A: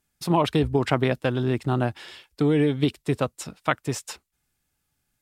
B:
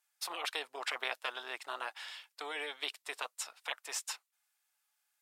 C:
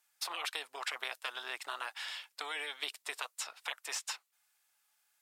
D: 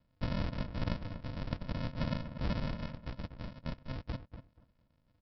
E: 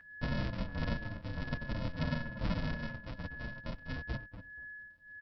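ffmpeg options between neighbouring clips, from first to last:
-af "highpass=f=750:w=0.5412,highpass=f=750:w=1.3066,afftfilt=real='re*lt(hypot(re,im),0.126)':imag='im*lt(hypot(re,im),0.126)':win_size=1024:overlap=0.75,volume=-3dB"
-filter_complex "[0:a]acrossover=split=960|5700[a][b][c];[a]acompressor=threshold=-56dB:ratio=4[d];[b]acompressor=threshold=-42dB:ratio=4[e];[c]acompressor=threshold=-49dB:ratio=4[f];[d][e][f]amix=inputs=3:normalize=0,volume=5dB"
-filter_complex "[0:a]alimiter=level_in=6.5dB:limit=-24dB:level=0:latency=1:release=23,volume=-6.5dB,aresample=11025,acrusher=samples=28:mix=1:aa=0.000001,aresample=44100,asplit=2[a][b];[b]adelay=241,lowpass=f=1.7k:p=1,volume=-9.5dB,asplit=2[c][d];[d]adelay=241,lowpass=f=1.7k:p=1,volume=0.2,asplit=2[e][f];[f]adelay=241,lowpass=f=1.7k:p=1,volume=0.2[g];[a][c][e][g]amix=inputs=4:normalize=0,volume=8dB"
-filter_complex "[0:a]aeval=exprs='val(0)+0.00447*sin(2*PI*1700*n/s)':c=same,asplit=2[a][b];[b]adelay=7.5,afreqshift=-1.6[c];[a][c]amix=inputs=2:normalize=1,volume=3dB"

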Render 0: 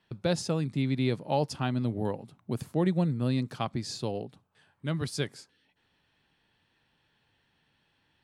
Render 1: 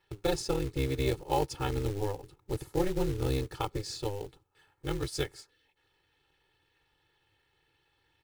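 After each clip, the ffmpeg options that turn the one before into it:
-af "tremolo=f=200:d=0.947,aecho=1:1:2.3:0.95,acrusher=bits=4:mode=log:mix=0:aa=0.000001"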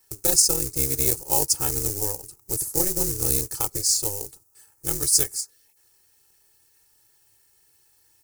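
-af "aexciter=amount=15.6:drive=6.6:freq=5.3k"

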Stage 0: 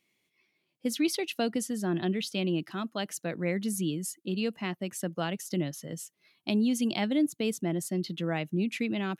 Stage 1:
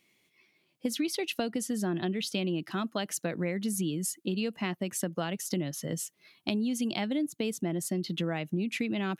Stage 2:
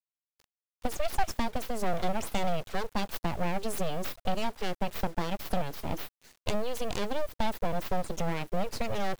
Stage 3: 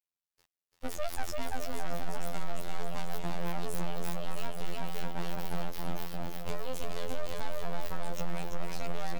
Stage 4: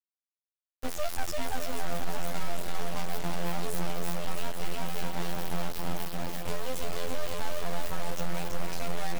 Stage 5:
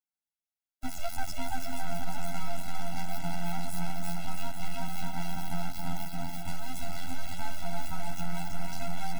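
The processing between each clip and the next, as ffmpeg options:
-af "acompressor=threshold=-34dB:ratio=6,volume=6dB"
-af "equalizer=f=400:w=3.1:g=12,aeval=exprs='abs(val(0))':c=same,acrusher=bits=8:mix=0:aa=0.000001"
-filter_complex "[0:a]asplit=2[a][b];[b]aecho=0:1:340|612|829.6|1004|1143:0.631|0.398|0.251|0.158|0.1[c];[a][c]amix=inputs=2:normalize=0,asoftclip=type=tanh:threshold=-21.5dB,afftfilt=real='hypot(re,im)*cos(PI*b)':imag='0':win_size=2048:overlap=0.75,volume=1dB"
-af "acrusher=bits=6:mix=0:aa=0.000001,volume=2.5dB"
-af "afftfilt=real='re*eq(mod(floor(b*sr/1024/320),2),0)':imag='im*eq(mod(floor(b*sr/1024/320),2),0)':win_size=1024:overlap=0.75"

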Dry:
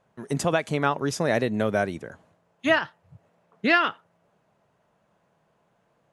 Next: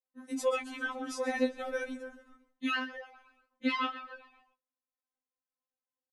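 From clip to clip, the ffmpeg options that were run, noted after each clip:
-filter_complex "[0:a]asplit=6[a][b][c][d][e][f];[b]adelay=131,afreqshift=-58,volume=-15dB[g];[c]adelay=262,afreqshift=-116,volume=-20.5dB[h];[d]adelay=393,afreqshift=-174,volume=-26dB[i];[e]adelay=524,afreqshift=-232,volume=-31.5dB[j];[f]adelay=655,afreqshift=-290,volume=-37.1dB[k];[a][g][h][i][j][k]amix=inputs=6:normalize=0,agate=range=-33dB:threshold=-52dB:ratio=3:detection=peak,afftfilt=real='re*3.46*eq(mod(b,12),0)':imag='im*3.46*eq(mod(b,12),0)':win_size=2048:overlap=0.75,volume=-6dB"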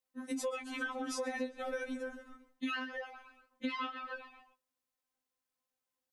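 -af "acompressor=threshold=-40dB:ratio=6,volume=5dB"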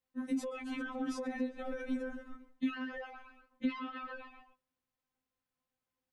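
-filter_complex "[0:a]bass=f=250:g=9,treble=f=4k:g=-8,acrossover=split=370[a][b];[b]alimiter=level_in=14dB:limit=-24dB:level=0:latency=1:release=55,volume=-14dB[c];[a][c]amix=inputs=2:normalize=0,volume=1dB"

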